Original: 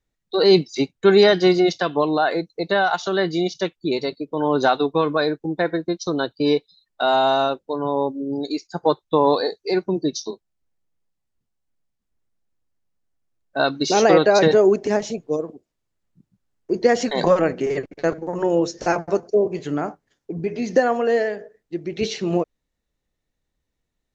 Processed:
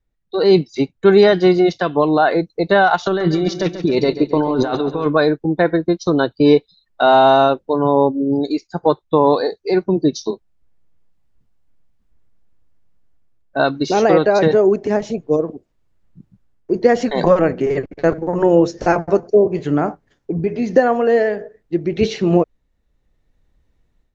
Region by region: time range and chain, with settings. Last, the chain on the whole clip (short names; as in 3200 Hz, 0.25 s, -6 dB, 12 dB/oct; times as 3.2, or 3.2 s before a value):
3.06–5.06 negative-ratio compressor -25 dBFS + feedback echo 0.138 s, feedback 55%, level -12 dB
whole clip: low shelf 99 Hz +8.5 dB; AGC; high shelf 3900 Hz -11.5 dB